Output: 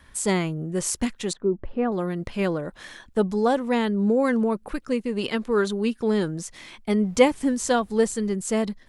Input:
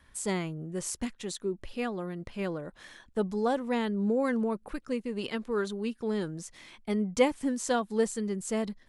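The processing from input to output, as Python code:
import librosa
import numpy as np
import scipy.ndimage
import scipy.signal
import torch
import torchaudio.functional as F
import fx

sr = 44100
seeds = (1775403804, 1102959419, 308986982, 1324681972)

p1 = fx.dmg_noise_colour(x, sr, seeds[0], colour='brown', level_db=-56.0, at=(7.01, 8.34), fade=0.02)
p2 = fx.rider(p1, sr, range_db=10, speed_s=2.0)
p3 = p1 + (p2 * librosa.db_to_amplitude(1.5))
y = fx.lowpass(p3, sr, hz=1100.0, slope=12, at=(1.33, 1.92))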